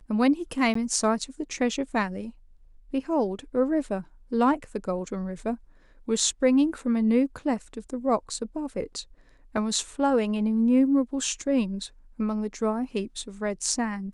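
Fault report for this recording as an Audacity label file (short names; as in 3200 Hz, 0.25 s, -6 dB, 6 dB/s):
0.740000	0.750000	gap 14 ms
9.570000	9.570000	gap 2.4 ms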